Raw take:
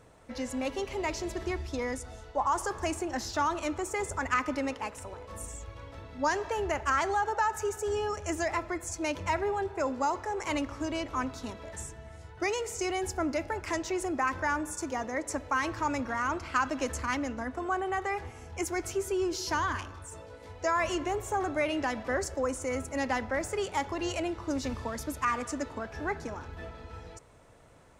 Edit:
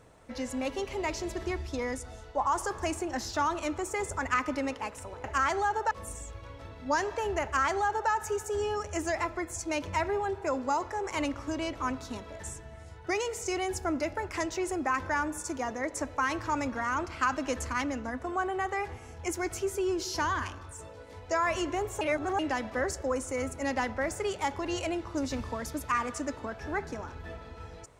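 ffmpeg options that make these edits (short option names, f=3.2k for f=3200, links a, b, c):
-filter_complex "[0:a]asplit=5[a][b][c][d][e];[a]atrim=end=5.242[f];[b]atrim=start=6.758:end=7.432[g];[c]atrim=start=5.238:end=21.342[h];[d]atrim=start=21.338:end=21.722,asetpts=PTS-STARTPTS,areverse[i];[e]atrim=start=21.718[j];[f][g]acrossfade=d=0.004:c1=hsin:c2=hsin[k];[k][h]acrossfade=d=0.004:c1=hsin:c2=hsin[l];[l][i]acrossfade=d=0.004:c1=hsin:c2=hsin[m];[m][j]acrossfade=d=0.004:c1=hsin:c2=hsin"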